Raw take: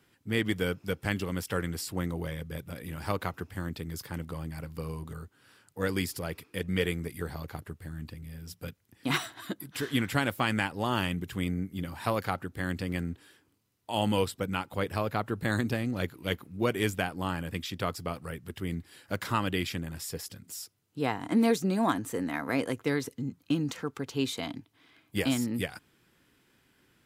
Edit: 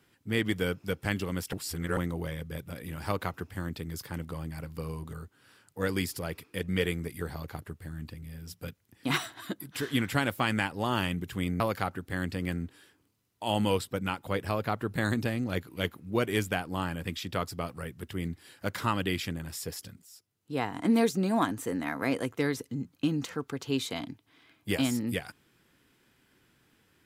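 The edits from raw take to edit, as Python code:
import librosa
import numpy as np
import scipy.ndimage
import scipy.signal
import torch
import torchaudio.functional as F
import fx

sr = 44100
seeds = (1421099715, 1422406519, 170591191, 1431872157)

y = fx.edit(x, sr, fx.reverse_span(start_s=1.53, length_s=0.44),
    fx.cut(start_s=11.6, length_s=0.47),
    fx.fade_in_from(start_s=20.49, length_s=0.7, floor_db=-18.0), tone=tone)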